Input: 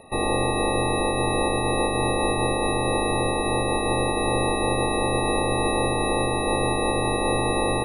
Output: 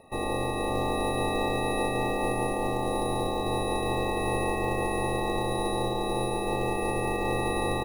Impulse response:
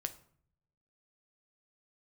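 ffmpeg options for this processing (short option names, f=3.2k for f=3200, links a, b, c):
-af "highshelf=f=4.1k:g=-5.5,aecho=1:1:576:0.473,acrusher=bits=6:mode=log:mix=0:aa=0.000001,volume=-6dB"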